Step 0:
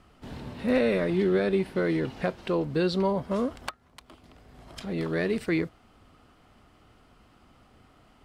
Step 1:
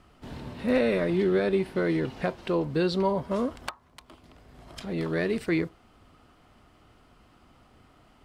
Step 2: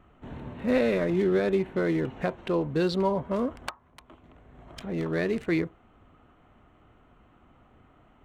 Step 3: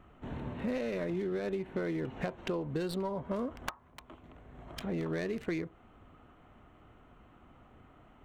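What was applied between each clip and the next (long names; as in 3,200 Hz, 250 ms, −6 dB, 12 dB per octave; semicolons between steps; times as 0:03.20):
on a send at −20 dB: low-pass with resonance 1,000 Hz, resonance Q 7.4 + convolution reverb RT60 0.35 s, pre-delay 3 ms
adaptive Wiener filter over 9 samples
stylus tracing distortion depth 0.16 ms; downward compressor 12 to 1, threshold −31 dBFS, peak gain reduction 12 dB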